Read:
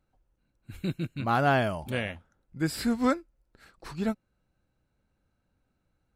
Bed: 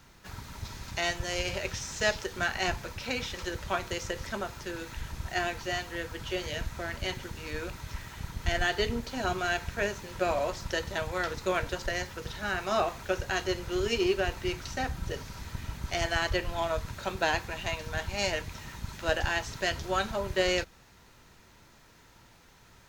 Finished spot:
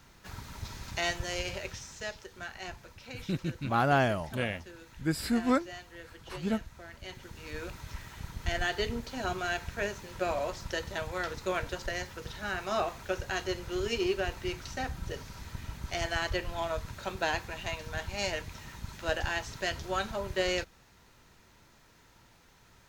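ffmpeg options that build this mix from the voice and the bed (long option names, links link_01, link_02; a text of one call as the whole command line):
ffmpeg -i stem1.wav -i stem2.wav -filter_complex "[0:a]adelay=2450,volume=-1.5dB[link_01];[1:a]volume=8dB,afade=type=out:start_time=1.14:duration=0.95:silence=0.281838,afade=type=in:start_time=7.02:duration=0.63:silence=0.354813[link_02];[link_01][link_02]amix=inputs=2:normalize=0" out.wav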